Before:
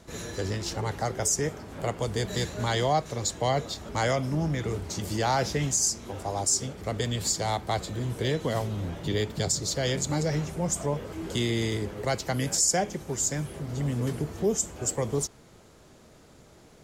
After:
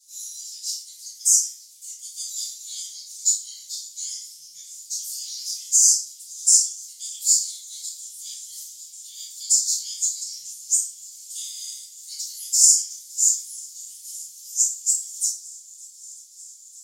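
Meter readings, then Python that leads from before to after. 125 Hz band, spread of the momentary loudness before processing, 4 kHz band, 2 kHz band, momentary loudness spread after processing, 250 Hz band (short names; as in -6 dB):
under -40 dB, 8 LU, +3.5 dB, under -25 dB, 22 LU, under -40 dB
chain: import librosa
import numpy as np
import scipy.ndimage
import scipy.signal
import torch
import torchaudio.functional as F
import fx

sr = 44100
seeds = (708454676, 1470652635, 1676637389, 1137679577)

y = scipy.signal.sosfilt(scipy.signal.cheby2(4, 70, 1300.0, 'highpass', fs=sr, output='sos'), x)
y = fx.echo_swing(y, sr, ms=944, ratio=1.5, feedback_pct=76, wet_db=-23)
y = fx.room_shoebox(y, sr, seeds[0], volume_m3=79.0, walls='mixed', distance_m=3.8)
y = y * librosa.db_to_amplitude(-1.0)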